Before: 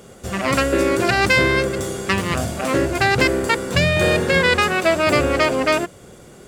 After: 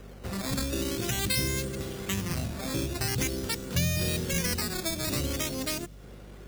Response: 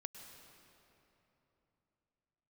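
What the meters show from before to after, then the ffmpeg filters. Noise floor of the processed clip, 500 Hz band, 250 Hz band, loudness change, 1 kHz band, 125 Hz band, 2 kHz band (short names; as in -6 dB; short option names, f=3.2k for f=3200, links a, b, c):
-46 dBFS, -17.5 dB, -10.5 dB, -12.0 dB, -20.0 dB, -7.0 dB, -18.0 dB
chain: -filter_complex "[0:a]acrusher=samples=10:mix=1:aa=0.000001:lfo=1:lforange=10:lforate=0.46,aeval=exprs='val(0)+0.0112*(sin(2*PI*50*n/s)+sin(2*PI*2*50*n/s)/2+sin(2*PI*3*50*n/s)/3+sin(2*PI*4*50*n/s)/4+sin(2*PI*5*50*n/s)/5)':c=same,acrossover=split=280|3000[a][b][c];[b]acompressor=threshold=-33dB:ratio=5[d];[a][d][c]amix=inputs=3:normalize=0,volume=-7dB"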